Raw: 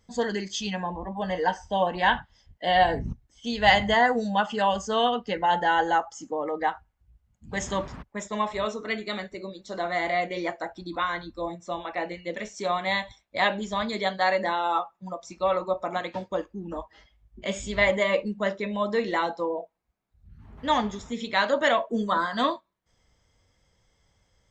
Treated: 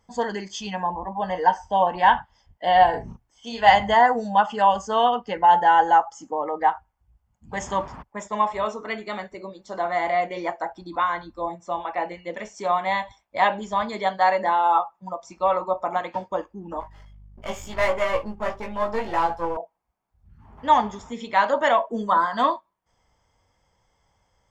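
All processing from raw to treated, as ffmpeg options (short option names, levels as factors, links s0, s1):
-filter_complex "[0:a]asettb=1/sr,asplit=3[s0][s1][s2];[s0]atrim=end=2.904[s3];[s1]atrim=start=2.9:end=3.69,asetpts=PTS-STARTPTS,afade=t=in:d=0.004:c=qsin,afade=t=out:st=0.786:d=0.004:c=qsin,lowshelf=f=250:g=-9,asplit=2[s4][s5];[s5]adelay=35,volume=0.631[s6];[s4][s6]amix=inputs=2:normalize=0,atrim=end_sample=34839[s7];[s2]atrim=start=3.686[s8];[s3][s7]acrossfade=d=0.004:c1=hsin:c2=qsin[s9];[s9][s8]acrossfade=d=0.004:c1=qsin:c2=hsin,asettb=1/sr,asplit=3[s10][s11][s12];[s10]atrim=end=16.804[s13];[s11]atrim=start=16.8:end=19.57,asetpts=PTS-STARTPTS,afade=t=in:d=0.004:c=qsin,afade=t=out:st=2.766:d=0.004:c=qsin,aeval=exprs='if(lt(val(0),0),0.251*val(0),val(0))':c=same,aeval=exprs='val(0)+0.00398*(sin(2*PI*50*n/s)+sin(2*PI*2*50*n/s)/2+sin(2*PI*3*50*n/s)/3+sin(2*PI*4*50*n/s)/4+sin(2*PI*5*50*n/s)/5)':c=same,asplit=2[s14][s15];[s15]adelay=18,volume=0.708[s16];[s14][s16]amix=inputs=2:normalize=0,atrim=end_sample=122157[s17];[s12]atrim=start=19.566[s18];[s13][s17]acrossfade=d=0.004:c1=hsin:c2=qsin[s19];[s19][s18]acrossfade=d=0.004:c1=qsin:c2=hsin,equalizer=f=900:w=1.5:g=10.5,bandreject=f=3900:w=7.4,volume=0.794"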